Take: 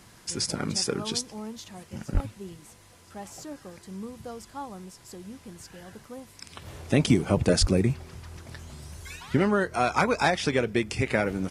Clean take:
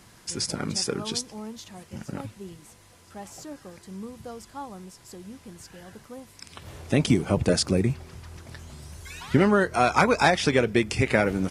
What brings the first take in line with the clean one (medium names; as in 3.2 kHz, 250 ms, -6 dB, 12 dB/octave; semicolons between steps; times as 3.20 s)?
2.13–2.25 s: high-pass 140 Hz 24 dB/octave; 7.60–7.72 s: high-pass 140 Hz 24 dB/octave; 9.16 s: gain correction +3.5 dB